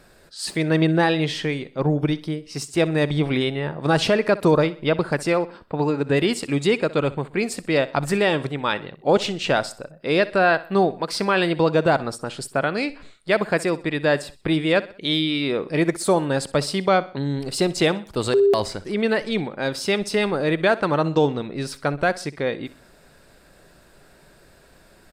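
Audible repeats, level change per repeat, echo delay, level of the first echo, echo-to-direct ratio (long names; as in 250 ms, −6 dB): 3, −7.5 dB, 63 ms, −18.0 dB, −17.0 dB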